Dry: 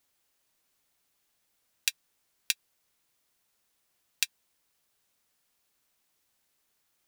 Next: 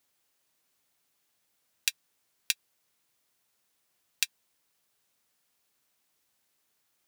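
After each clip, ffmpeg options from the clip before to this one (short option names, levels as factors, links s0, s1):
-af "highpass=74"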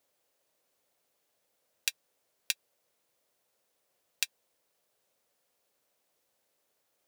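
-af "equalizer=f=540:t=o:w=1:g=12.5,volume=0.708"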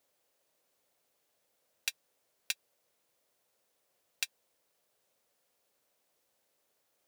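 -af "asoftclip=type=tanh:threshold=0.112"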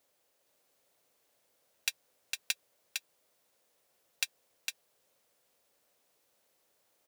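-af "aecho=1:1:456:0.596,volume=1.26"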